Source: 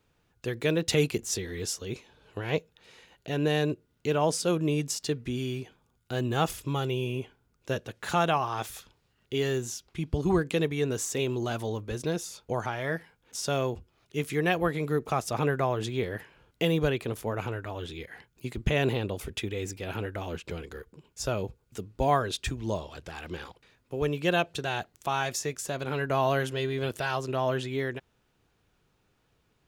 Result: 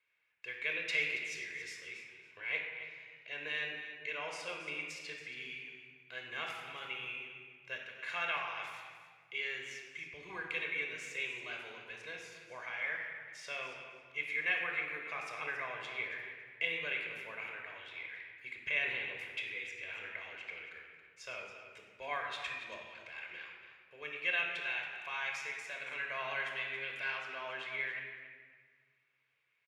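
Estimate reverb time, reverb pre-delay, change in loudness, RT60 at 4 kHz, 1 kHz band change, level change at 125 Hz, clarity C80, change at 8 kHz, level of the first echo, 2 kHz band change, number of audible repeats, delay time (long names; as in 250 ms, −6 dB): 1.6 s, 24 ms, −8.5 dB, 1.1 s, −13.5 dB, −30.0 dB, 4.0 dB, −18.5 dB, −13.0 dB, +0.5 dB, 2, 277 ms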